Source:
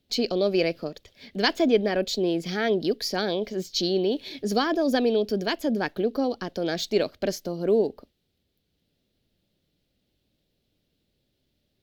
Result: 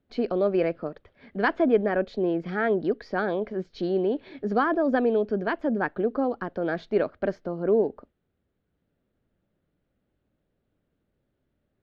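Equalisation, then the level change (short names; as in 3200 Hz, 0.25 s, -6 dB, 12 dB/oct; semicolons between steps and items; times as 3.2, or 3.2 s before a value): synth low-pass 1400 Hz, resonance Q 1.9; -1.0 dB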